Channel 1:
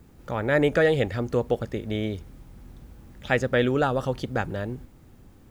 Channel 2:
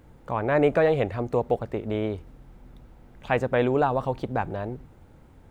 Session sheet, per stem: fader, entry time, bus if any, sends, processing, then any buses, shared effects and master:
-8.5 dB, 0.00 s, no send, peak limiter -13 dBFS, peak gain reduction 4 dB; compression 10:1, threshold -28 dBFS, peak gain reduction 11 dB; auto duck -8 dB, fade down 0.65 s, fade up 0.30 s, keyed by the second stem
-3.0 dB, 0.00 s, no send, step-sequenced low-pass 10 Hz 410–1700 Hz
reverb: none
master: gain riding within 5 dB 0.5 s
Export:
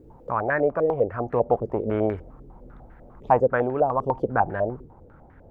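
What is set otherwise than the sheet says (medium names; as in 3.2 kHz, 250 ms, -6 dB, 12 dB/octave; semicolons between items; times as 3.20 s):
stem 1 -8.5 dB -> -19.0 dB; stem 2: polarity flipped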